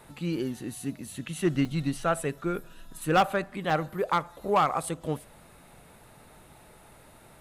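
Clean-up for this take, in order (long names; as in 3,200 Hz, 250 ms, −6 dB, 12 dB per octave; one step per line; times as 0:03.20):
clipped peaks rebuilt −16 dBFS
repair the gap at 0:01.65/0:03.70, 3.3 ms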